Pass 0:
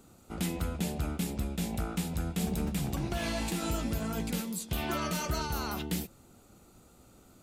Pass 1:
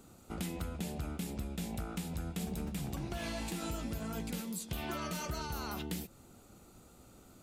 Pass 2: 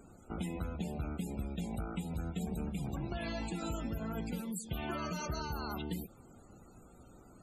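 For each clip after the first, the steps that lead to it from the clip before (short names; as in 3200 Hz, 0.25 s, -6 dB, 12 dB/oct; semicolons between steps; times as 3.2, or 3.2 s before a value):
compressor 2.5:1, threshold -38 dBFS, peak gain reduction 8 dB
added noise pink -64 dBFS; loudest bins only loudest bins 64; gain +1 dB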